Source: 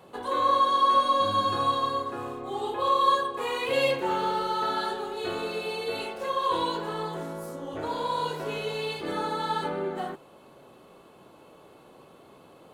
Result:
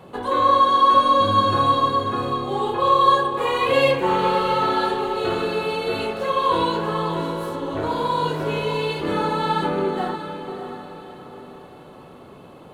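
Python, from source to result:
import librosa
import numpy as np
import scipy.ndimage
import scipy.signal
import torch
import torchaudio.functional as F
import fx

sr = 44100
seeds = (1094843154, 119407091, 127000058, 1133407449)

p1 = fx.bass_treble(x, sr, bass_db=6, treble_db=-5)
p2 = p1 + fx.echo_diffused(p1, sr, ms=608, feedback_pct=41, wet_db=-9, dry=0)
y = F.gain(torch.from_numpy(p2), 6.5).numpy()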